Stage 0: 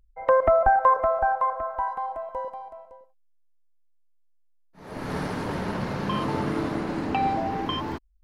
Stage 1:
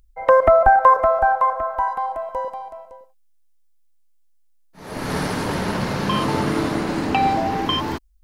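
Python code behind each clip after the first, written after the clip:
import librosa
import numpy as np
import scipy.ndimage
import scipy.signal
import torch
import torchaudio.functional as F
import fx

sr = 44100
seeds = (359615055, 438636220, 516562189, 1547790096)

y = fx.high_shelf(x, sr, hz=3400.0, db=9.0)
y = y * 10.0 ** (5.5 / 20.0)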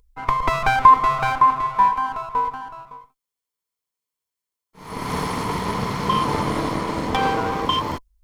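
y = fx.lower_of_two(x, sr, delay_ms=0.93)
y = fx.small_body(y, sr, hz=(460.0, 1000.0), ring_ms=40, db=10)
y = y * 10.0 ** (-1.5 / 20.0)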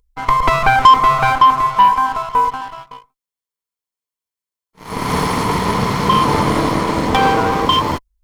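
y = fx.leveller(x, sr, passes=2)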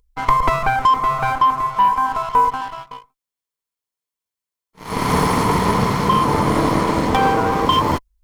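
y = fx.dynamic_eq(x, sr, hz=3600.0, q=0.72, threshold_db=-27.0, ratio=4.0, max_db=-5)
y = fx.rider(y, sr, range_db=5, speed_s=0.5)
y = y * 10.0 ** (-2.0 / 20.0)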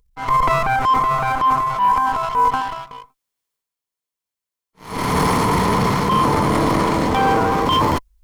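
y = fx.transient(x, sr, attack_db=-7, sustain_db=7)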